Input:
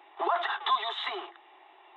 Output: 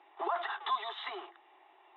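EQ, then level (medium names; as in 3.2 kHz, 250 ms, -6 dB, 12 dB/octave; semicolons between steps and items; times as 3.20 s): distance through air 150 m; -5.0 dB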